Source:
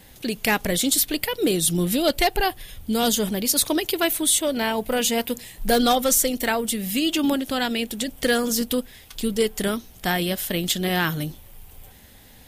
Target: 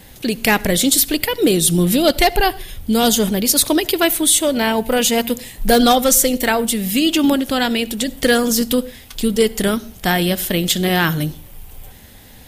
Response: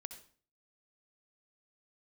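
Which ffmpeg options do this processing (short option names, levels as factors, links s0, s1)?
-filter_complex "[0:a]asplit=2[s0][s1];[1:a]atrim=start_sample=2205,lowshelf=f=480:g=7[s2];[s1][s2]afir=irnorm=-1:irlink=0,volume=0.398[s3];[s0][s3]amix=inputs=2:normalize=0,volume=1.58"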